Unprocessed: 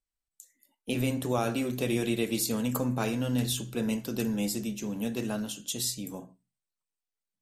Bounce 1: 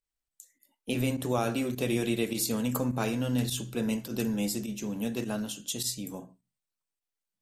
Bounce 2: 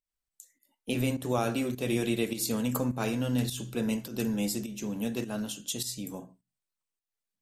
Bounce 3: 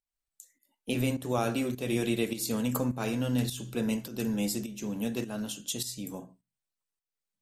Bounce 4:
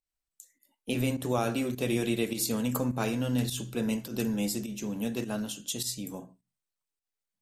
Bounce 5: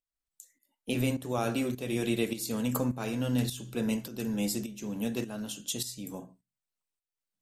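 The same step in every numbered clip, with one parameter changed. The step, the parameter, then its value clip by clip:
fake sidechain pumping, release: 60, 193, 294, 114, 496 milliseconds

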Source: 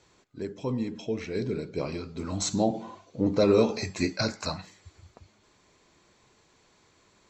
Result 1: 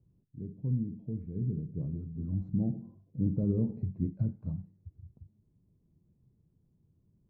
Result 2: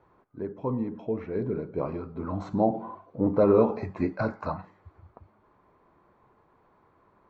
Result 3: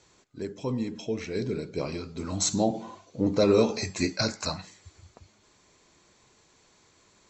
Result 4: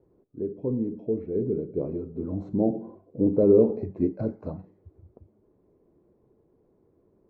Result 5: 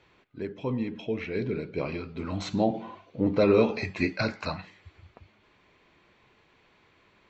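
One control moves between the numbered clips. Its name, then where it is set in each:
low-pass with resonance, frequency: 150, 1,100, 7,400, 420, 2,700 Hertz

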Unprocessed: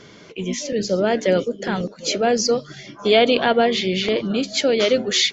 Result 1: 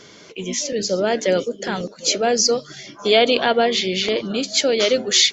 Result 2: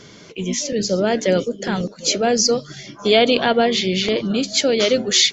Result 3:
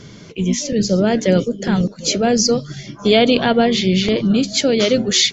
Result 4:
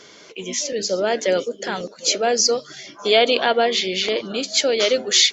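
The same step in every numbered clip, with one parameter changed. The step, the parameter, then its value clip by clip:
bass and treble, bass: −5, +3, +13, −14 decibels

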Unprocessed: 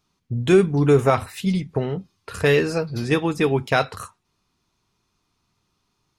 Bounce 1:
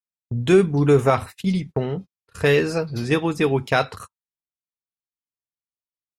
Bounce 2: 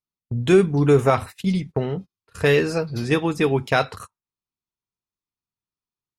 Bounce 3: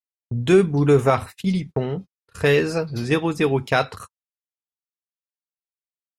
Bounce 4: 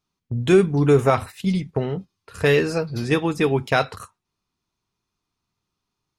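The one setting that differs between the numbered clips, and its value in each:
noise gate, range: −39, −26, −52, −9 decibels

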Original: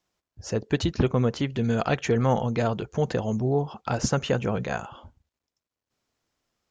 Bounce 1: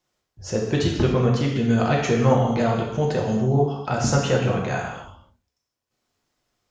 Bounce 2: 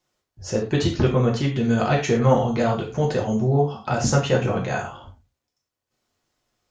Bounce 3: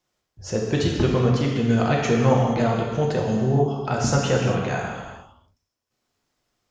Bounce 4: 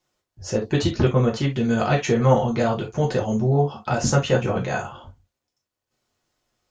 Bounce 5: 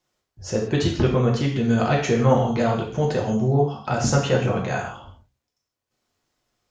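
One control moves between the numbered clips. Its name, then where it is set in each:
reverb whose tail is shaped and stops, gate: 320, 140, 490, 90, 200 milliseconds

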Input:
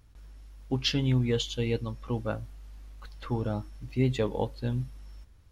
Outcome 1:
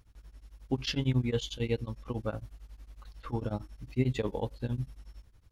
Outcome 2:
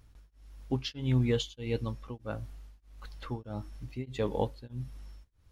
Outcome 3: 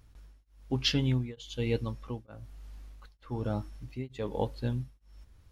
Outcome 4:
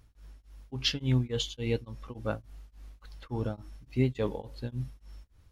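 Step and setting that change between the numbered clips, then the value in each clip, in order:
tremolo along a rectified sine, nulls at: 11, 1.6, 1.1, 3.5 Hertz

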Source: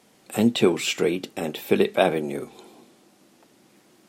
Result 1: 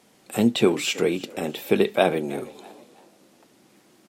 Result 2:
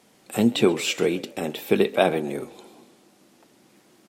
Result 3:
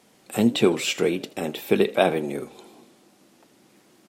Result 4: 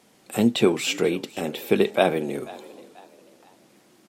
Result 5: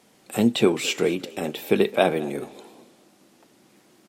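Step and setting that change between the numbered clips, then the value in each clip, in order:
echo with shifted repeats, delay time: 325, 132, 80, 488, 214 milliseconds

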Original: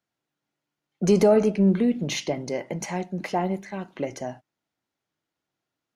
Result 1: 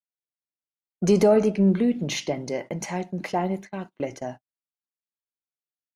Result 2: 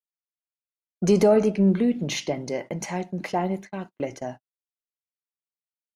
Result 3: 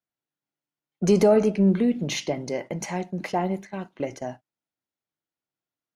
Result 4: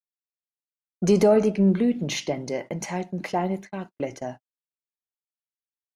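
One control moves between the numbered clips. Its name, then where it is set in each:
noise gate, range: −27, −40, −10, −55 decibels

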